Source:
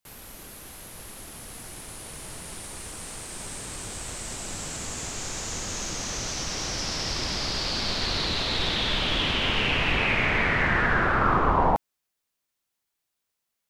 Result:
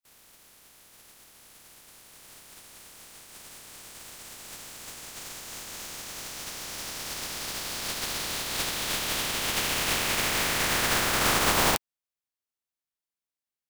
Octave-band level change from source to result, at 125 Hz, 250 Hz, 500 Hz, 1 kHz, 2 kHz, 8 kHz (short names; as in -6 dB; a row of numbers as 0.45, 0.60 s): -8.5, -6.0, -4.0, -5.0, -4.5, +2.0 dB